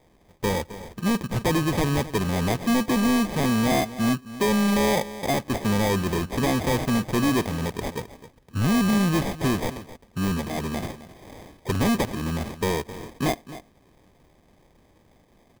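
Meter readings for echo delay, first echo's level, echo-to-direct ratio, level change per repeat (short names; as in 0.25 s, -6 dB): 0.263 s, -15.5 dB, -15.5 dB, no steady repeat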